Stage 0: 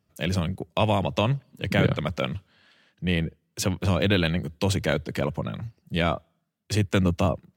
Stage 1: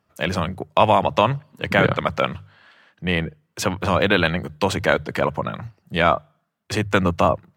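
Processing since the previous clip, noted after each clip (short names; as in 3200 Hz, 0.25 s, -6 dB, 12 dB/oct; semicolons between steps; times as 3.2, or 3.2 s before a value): bell 1100 Hz +12 dB 2.2 oct; notches 50/100/150 Hz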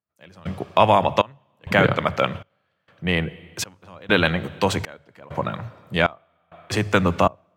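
on a send at -17 dB: reverb RT60 2.0 s, pre-delay 11 ms; on the sum: step gate "...xxxxx" 99 bpm -24 dB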